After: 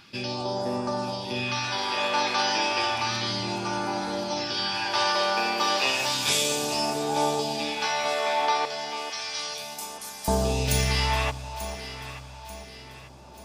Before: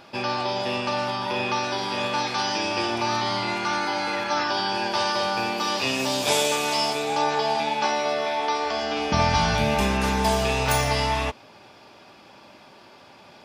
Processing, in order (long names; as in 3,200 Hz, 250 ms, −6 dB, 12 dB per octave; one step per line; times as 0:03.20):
all-pass phaser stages 2, 0.32 Hz, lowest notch 100–2,700 Hz
0:08.65–0:10.28: first difference
delay that swaps between a low-pass and a high-pass 444 ms, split 1,000 Hz, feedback 67%, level −8.5 dB